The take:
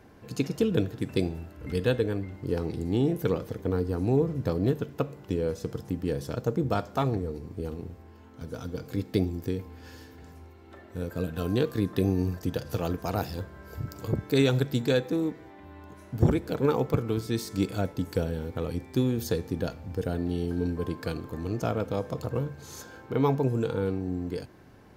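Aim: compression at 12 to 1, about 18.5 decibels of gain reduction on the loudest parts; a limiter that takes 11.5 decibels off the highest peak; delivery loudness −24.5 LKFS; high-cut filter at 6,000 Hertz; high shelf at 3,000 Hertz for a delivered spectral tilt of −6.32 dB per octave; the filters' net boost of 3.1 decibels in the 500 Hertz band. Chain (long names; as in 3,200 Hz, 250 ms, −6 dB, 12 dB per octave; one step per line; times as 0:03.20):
low-pass filter 6,000 Hz
parametric band 500 Hz +3.5 dB
high-shelf EQ 3,000 Hz +6 dB
downward compressor 12 to 1, threshold −36 dBFS
level +20.5 dB
brickwall limiter −13 dBFS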